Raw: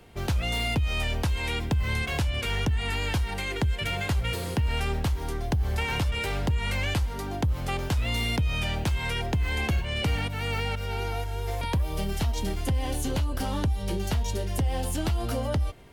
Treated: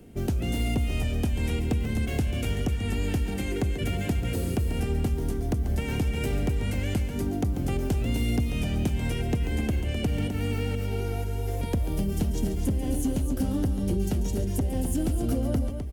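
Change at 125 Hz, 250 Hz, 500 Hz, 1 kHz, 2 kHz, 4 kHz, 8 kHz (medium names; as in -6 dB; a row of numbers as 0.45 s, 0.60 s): +0.5 dB, +5.5 dB, +1.0 dB, -6.5 dB, -7.5 dB, -7.5 dB, -1.0 dB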